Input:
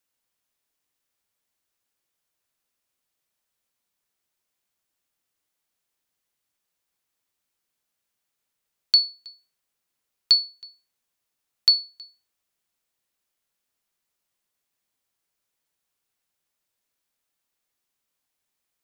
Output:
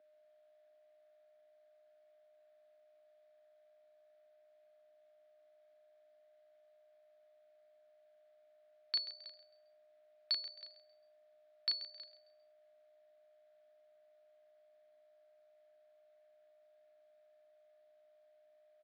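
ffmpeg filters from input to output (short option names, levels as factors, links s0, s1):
-filter_complex "[0:a]alimiter=limit=0.141:level=0:latency=1:release=169,asplit=2[s0][s1];[s1]adelay=36,volume=0.75[s2];[s0][s2]amix=inputs=2:normalize=0,aeval=exprs='val(0)+0.001*sin(2*PI*610*n/s)':c=same,highpass=f=220:w=0.5412,highpass=f=220:w=1.3066,equalizer=f=230:t=q:w=4:g=-6,equalizer=f=380:t=q:w=4:g=-3,equalizer=f=540:t=q:w=4:g=-9,equalizer=f=960:t=q:w=4:g=-7,equalizer=f=1700:t=q:w=4:g=4,equalizer=f=2800:t=q:w=4:g=-6,lowpass=f=3500:w=0.5412,lowpass=f=3500:w=1.3066,asplit=2[s3][s4];[s4]asplit=3[s5][s6][s7];[s5]adelay=133,afreqshift=62,volume=0.211[s8];[s6]adelay=266,afreqshift=124,volume=0.0653[s9];[s7]adelay=399,afreqshift=186,volume=0.0204[s10];[s8][s9][s10]amix=inputs=3:normalize=0[s11];[s3][s11]amix=inputs=2:normalize=0"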